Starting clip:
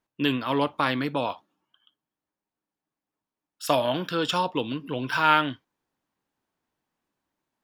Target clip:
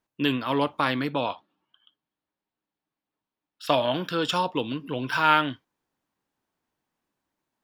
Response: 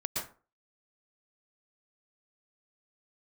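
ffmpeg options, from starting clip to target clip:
-filter_complex "[0:a]asettb=1/sr,asplit=3[s0][s1][s2];[s0]atrim=end=1.104[s3];[s1]atrim=start=1.1:end=3.92,asetpts=PTS-STARTPTS,afade=t=in:d=0.004:c=qsin,afade=t=out:st=2.816:d=0.004:c=qsin,highshelf=f=5200:t=q:w=1.5:g=-9[s4];[s2]atrim=start=3.916[s5];[s3][s4]acrossfade=d=0.004:c1=hsin:c2=qsin[s6];[s6][s5]acrossfade=d=0.004:c1=qsin:c2=hsin"

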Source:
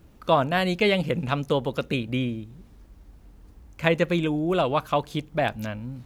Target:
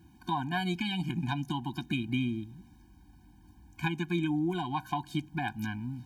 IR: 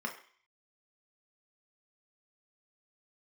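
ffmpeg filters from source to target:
-af "highpass=65,lowshelf=f=130:g=-4.5,acompressor=threshold=0.0501:ratio=2.5,afftfilt=real='re*eq(mod(floor(b*sr/1024/360),2),0)':imag='im*eq(mod(floor(b*sr/1024/360),2),0)':win_size=1024:overlap=0.75"

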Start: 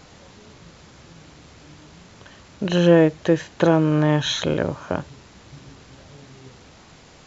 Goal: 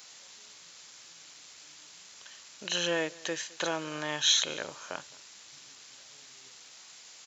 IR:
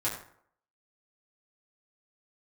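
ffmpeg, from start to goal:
-filter_complex "[0:a]aderivative,asplit=2[s0][s1];[s1]aecho=0:1:213:0.0708[s2];[s0][s2]amix=inputs=2:normalize=0,volume=2.11"

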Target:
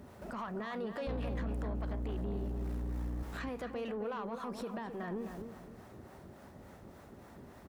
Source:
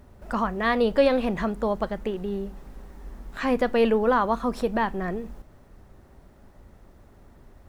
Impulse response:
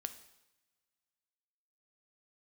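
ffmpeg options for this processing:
-filter_complex "[0:a]highpass=110,acompressor=threshold=0.02:ratio=6,alimiter=level_in=2.66:limit=0.0631:level=0:latency=1:release=29,volume=0.376,acrossover=split=510[s0][s1];[s0]aeval=exprs='val(0)*(1-0.5/2+0.5/2*cos(2*PI*3.5*n/s))':c=same[s2];[s1]aeval=exprs='val(0)*(1-0.5/2-0.5/2*cos(2*PI*3.5*n/s))':c=same[s3];[s2][s3]amix=inputs=2:normalize=0,asettb=1/sr,asplit=3[s4][s5][s6];[s4]atrim=end=1.074[s7];[s5]atrim=start=1.07:end=3.23,asetpts=PTS-STARTPTS,afade=t=in:d=0.004:c=qsin,afade=t=out:st=2.156:d=0.004:c=qsin,aeval=exprs='val(0)+0.0141*(sin(2*PI*60*n/s)+sin(2*PI*2*60*n/s)/2+sin(2*PI*3*60*n/s)/3+sin(2*PI*4*60*n/s)/4+sin(2*PI*5*60*n/s)/5)':c=same[s8];[s6]atrim=start=3.226[s9];[s7][s8]acrossfade=d=0.004:c1=hsin:c2=qsin[s10];[s10][s9]acrossfade=d=0.004:c1=qsin:c2=hsin,asoftclip=type=tanh:threshold=0.0141,asplit=2[s11][s12];[s12]adelay=263,lowpass=f=1700:p=1,volume=0.447,asplit=2[s13][s14];[s14]adelay=263,lowpass=f=1700:p=1,volume=0.32,asplit=2[s15][s16];[s16]adelay=263,lowpass=f=1700:p=1,volume=0.32,asplit=2[s17][s18];[s18]adelay=263,lowpass=f=1700:p=1,volume=0.32[s19];[s11][s13][s15][s17][s19]amix=inputs=5:normalize=0,volume=1.68"

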